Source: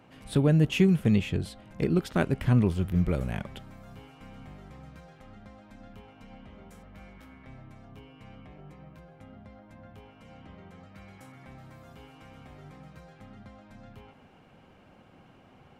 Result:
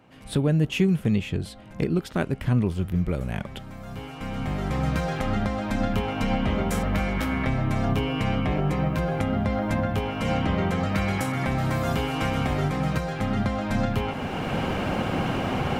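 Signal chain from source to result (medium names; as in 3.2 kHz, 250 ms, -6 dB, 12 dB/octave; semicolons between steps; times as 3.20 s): recorder AGC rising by 13 dB/s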